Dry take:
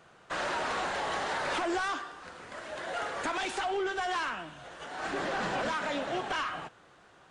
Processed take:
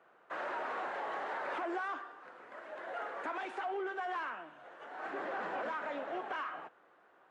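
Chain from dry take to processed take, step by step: three-band isolator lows -22 dB, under 260 Hz, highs -19 dB, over 2300 Hz; gain -5 dB

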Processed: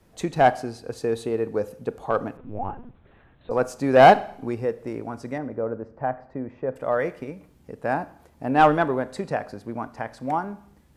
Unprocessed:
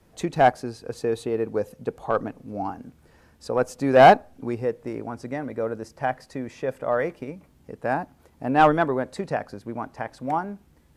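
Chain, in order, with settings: 5.38–6.76 LPF 1200 Hz 12 dB/oct; Schroeder reverb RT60 0.62 s, combs from 27 ms, DRR 15.5 dB; 2.37–3.51 LPC vocoder at 8 kHz pitch kept

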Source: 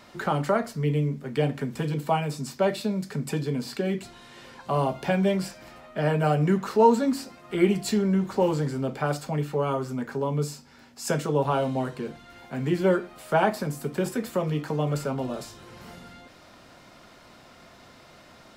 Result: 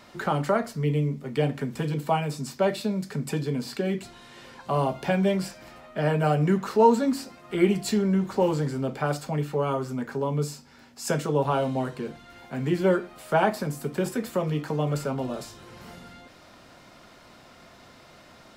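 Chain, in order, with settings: 0.83–1.38 notch 1600 Hz, Q 7

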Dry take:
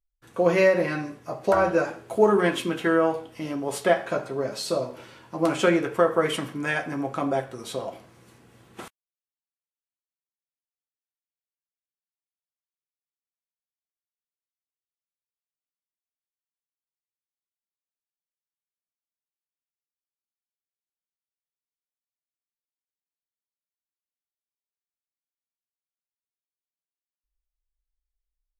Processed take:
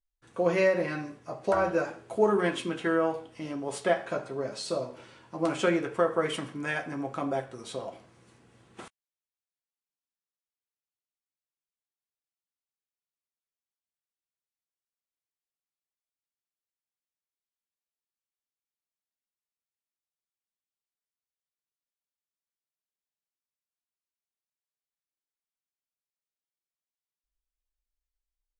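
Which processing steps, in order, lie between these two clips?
downsampling 22050 Hz; gain -5 dB

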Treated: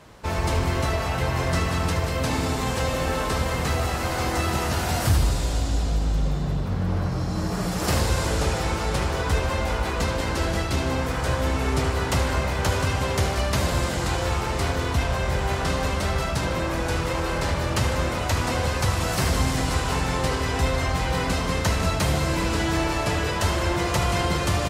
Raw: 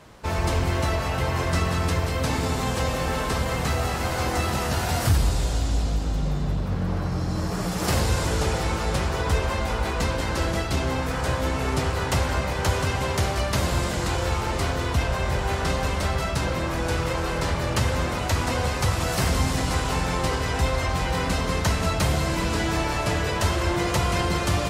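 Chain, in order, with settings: feedback echo 76 ms, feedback 59%, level -11.5 dB

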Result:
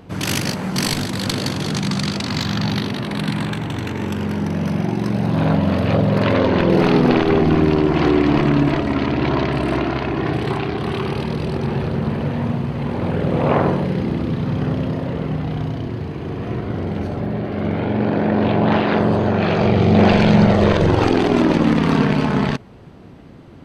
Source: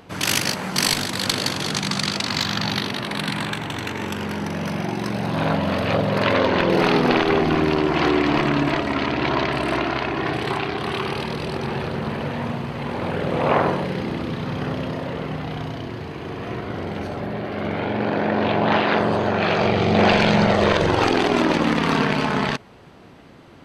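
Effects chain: low shelf 430 Hz +11.5 dB; gain -3 dB

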